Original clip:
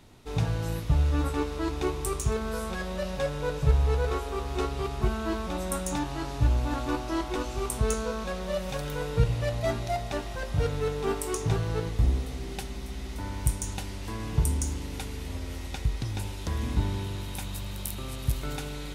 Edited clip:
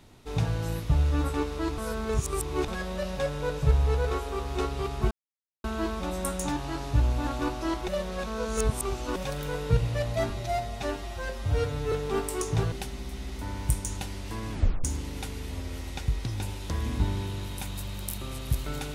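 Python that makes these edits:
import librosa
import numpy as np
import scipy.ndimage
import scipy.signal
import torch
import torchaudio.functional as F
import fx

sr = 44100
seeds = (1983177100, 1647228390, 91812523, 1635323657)

y = fx.edit(x, sr, fx.reverse_span(start_s=1.78, length_s=0.9),
    fx.insert_silence(at_s=5.11, length_s=0.53),
    fx.reverse_span(start_s=7.35, length_s=1.28),
    fx.stretch_span(start_s=9.77, length_s=1.08, factor=1.5),
    fx.cut(start_s=11.65, length_s=0.84),
    fx.tape_stop(start_s=14.29, length_s=0.32), tone=tone)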